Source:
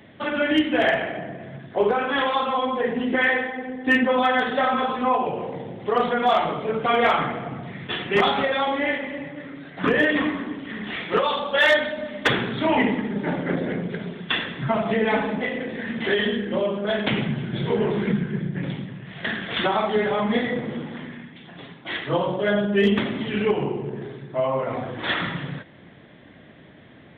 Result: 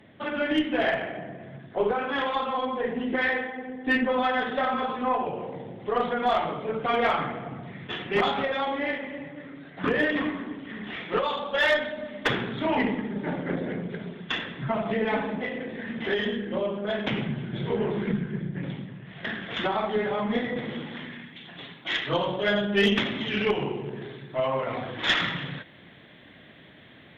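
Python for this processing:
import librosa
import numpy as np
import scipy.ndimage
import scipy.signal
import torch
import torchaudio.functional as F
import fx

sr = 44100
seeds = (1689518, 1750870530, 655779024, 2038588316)

y = fx.high_shelf(x, sr, hz=2100.0, db=fx.steps((0.0, -2.0), (20.56, 12.0)))
y = fx.cheby_harmonics(y, sr, harmonics=(2, 3, 6, 8), levels_db=(-15, -28, -35, -42), full_scale_db=-4.0)
y = y * 10.0 ** (-3.5 / 20.0)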